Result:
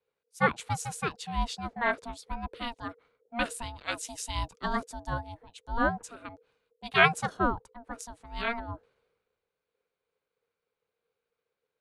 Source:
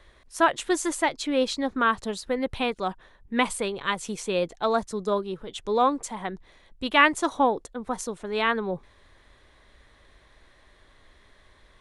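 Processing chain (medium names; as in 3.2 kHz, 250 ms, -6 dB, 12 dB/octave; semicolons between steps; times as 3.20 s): 3.78–5.35 s: treble shelf 3.9 kHz +7.5 dB; ring modulator 470 Hz; three bands expanded up and down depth 70%; trim -5.5 dB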